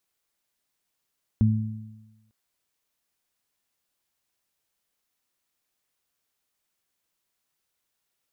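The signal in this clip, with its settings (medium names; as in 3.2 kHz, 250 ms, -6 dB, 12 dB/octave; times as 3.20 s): additive tone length 0.90 s, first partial 109 Hz, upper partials -3 dB, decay 1.09 s, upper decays 1.07 s, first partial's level -16 dB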